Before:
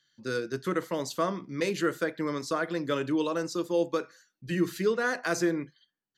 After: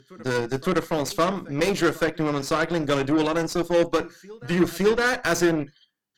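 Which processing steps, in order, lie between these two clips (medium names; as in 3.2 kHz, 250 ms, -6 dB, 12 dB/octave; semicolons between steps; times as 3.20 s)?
reverse echo 562 ms -22 dB; Chebyshev shaper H 8 -19 dB, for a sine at -15.5 dBFS; trim +6 dB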